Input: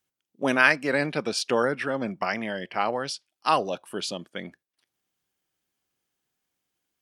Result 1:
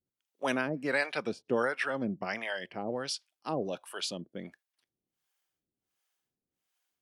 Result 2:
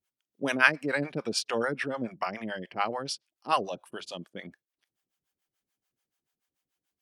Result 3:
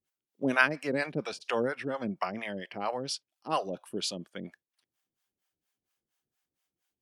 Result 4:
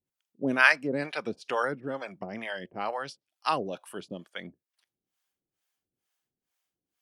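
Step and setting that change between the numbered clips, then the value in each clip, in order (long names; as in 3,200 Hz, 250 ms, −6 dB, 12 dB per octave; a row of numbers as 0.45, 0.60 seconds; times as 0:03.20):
two-band tremolo in antiphase, speed: 1.4, 6.9, 4.3, 2.2 Hertz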